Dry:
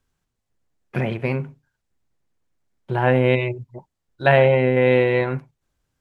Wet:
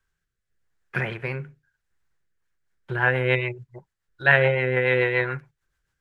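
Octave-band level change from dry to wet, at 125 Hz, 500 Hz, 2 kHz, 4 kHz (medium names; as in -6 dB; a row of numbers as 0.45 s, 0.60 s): -5.5 dB, -6.5 dB, +3.5 dB, -1.5 dB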